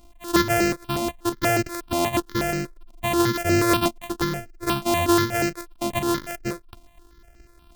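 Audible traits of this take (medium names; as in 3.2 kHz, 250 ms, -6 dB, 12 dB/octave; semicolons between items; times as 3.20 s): a buzz of ramps at a fixed pitch in blocks of 128 samples; notches that jump at a steady rate 8.3 Hz 440–3500 Hz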